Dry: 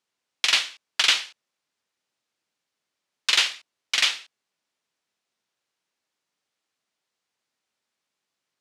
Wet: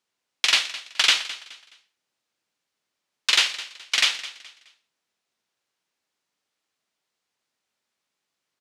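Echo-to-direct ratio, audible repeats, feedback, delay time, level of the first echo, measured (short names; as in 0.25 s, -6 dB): -15.5 dB, 2, 32%, 0.211 s, -16.0 dB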